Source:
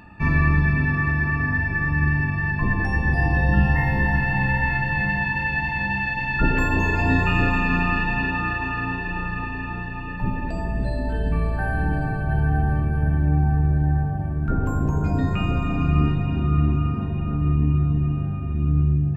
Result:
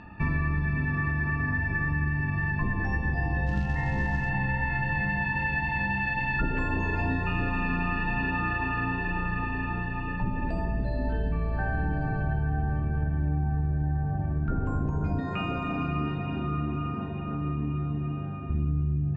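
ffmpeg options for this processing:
ffmpeg -i in.wav -filter_complex "[0:a]asplit=3[link_01][link_02][link_03];[link_01]afade=type=out:start_time=3.46:duration=0.02[link_04];[link_02]acrusher=bits=5:mode=log:mix=0:aa=0.000001,afade=type=in:start_time=3.46:duration=0.02,afade=type=out:start_time=4.28:duration=0.02[link_05];[link_03]afade=type=in:start_time=4.28:duration=0.02[link_06];[link_04][link_05][link_06]amix=inputs=3:normalize=0,asettb=1/sr,asplit=3[link_07][link_08][link_09];[link_07]atrim=end=15.204[link_10];[link_08]atrim=start=15.2:end=18.5,asetpts=PTS-STARTPTS,afade=type=in:duration=0.004:curve=qsin,afade=type=out:start_time=3.296:duration=0.004:curve=qsin,highpass=frequency=350:poles=1[link_11];[link_09]atrim=start=18.496[link_12];[link_10][link_11]acrossfade=duration=0.004:curve1=hsin:curve2=qsin[link_13];[link_13][link_12]acrossfade=duration=0.004:curve1=qsin:curve2=hsin,lowpass=frequency=6400:width=0.5412,lowpass=frequency=6400:width=1.3066,highshelf=frequency=4600:gain=-9,acompressor=threshold=-24dB:ratio=6" out.wav

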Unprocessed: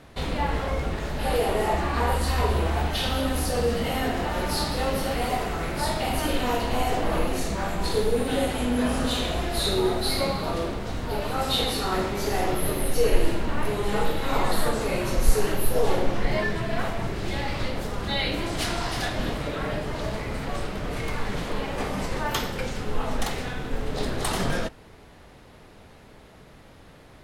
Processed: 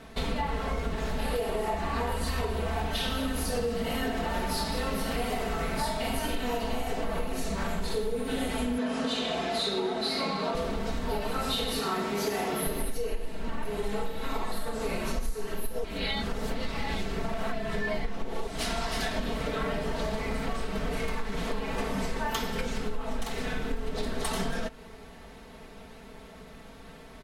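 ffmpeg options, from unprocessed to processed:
ffmpeg -i in.wav -filter_complex "[0:a]asettb=1/sr,asplit=3[link_01][link_02][link_03];[link_01]atrim=end=8.784[link_04];[link_02]atrim=start=8.78:end=10.55,asetpts=PTS-STARTPTS,afade=type=in:duration=0.004:curve=qsin,afade=type=out:start_time=1.766:duration=0.004:curve=qsin,highpass=190,lowpass=6400[link_05];[link_03]atrim=start=10.546[link_06];[link_04][link_05]acrossfade=duration=0.004:curve1=hsin:curve2=qsin[link_07];[link_07][link_06]acrossfade=duration=0.004:curve1=qsin:curve2=hsin,asettb=1/sr,asplit=3[link_08][link_09][link_10];[link_08]atrim=end=11.794[link_11];[link_09]atrim=start=11.79:end=12.67,asetpts=PTS-STARTPTS,afade=type=in:duration=0.004:curve=qsin,afade=type=out:start_time=0.876:duration=0.004:curve=qsin,highpass=140[link_12];[link_10]atrim=start=12.666[link_13];[link_11][link_12]acrossfade=duration=0.004:curve1=hsin:curve2=qsin[link_14];[link_14][link_13]acrossfade=duration=0.004:curve1=qsin:curve2=hsin,asplit=3[link_15][link_16][link_17];[link_15]atrim=end=15.842[link_18];[link_16]atrim=start=15.838:end=18.472,asetpts=PTS-STARTPTS,areverse[link_19];[link_17]atrim=start=18.468[link_20];[link_18][link_19]acrossfade=duration=0.004:curve1=hsin:curve2=hsin[link_21];[link_21][link_20]acrossfade=duration=0.004:curve1=hsin:curve2=hsin,aecho=1:1:4.5:0.76,acompressor=threshold=-26dB:ratio=10" out.wav

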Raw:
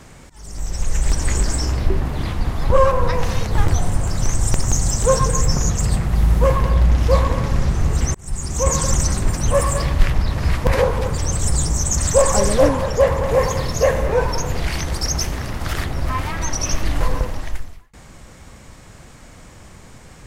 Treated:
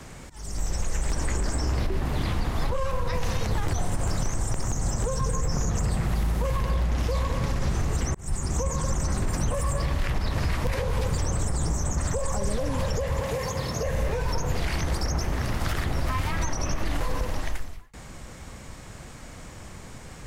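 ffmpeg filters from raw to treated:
ffmpeg -i in.wav -filter_complex "[0:a]asettb=1/sr,asplit=3[link_01][link_02][link_03];[link_01]atrim=end=13.204[link_04];[link_02]atrim=start=13.2:end=13.83,asetpts=PTS-STARTPTS,afade=type=in:duration=0.004:curve=qsin,afade=type=out:start_time=0.626:duration=0.004:curve=qsin,highpass=frequency=180:poles=1[link_05];[link_03]atrim=start=13.826[link_06];[link_04][link_05]acrossfade=duration=0.004:curve1=hsin:curve2=qsin[link_07];[link_07][link_06]acrossfade=duration=0.004:curve1=qsin:curve2=hsin,alimiter=limit=-12.5dB:level=0:latency=1:release=80,acrossover=split=200|2100[link_08][link_09][link_10];[link_08]acompressor=threshold=-23dB:ratio=4[link_11];[link_09]acompressor=threshold=-31dB:ratio=4[link_12];[link_10]acompressor=threshold=-37dB:ratio=4[link_13];[link_11][link_12][link_13]amix=inputs=3:normalize=0" out.wav

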